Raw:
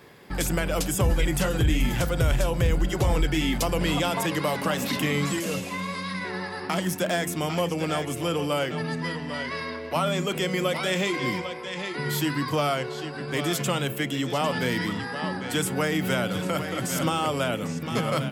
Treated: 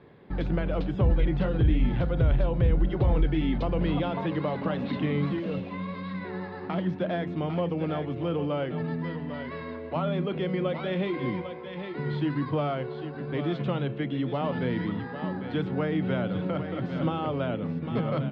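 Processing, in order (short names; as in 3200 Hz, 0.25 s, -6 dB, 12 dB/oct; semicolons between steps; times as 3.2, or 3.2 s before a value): elliptic low-pass 4000 Hz, stop band 80 dB; tilt shelf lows +7 dB; gain -5.5 dB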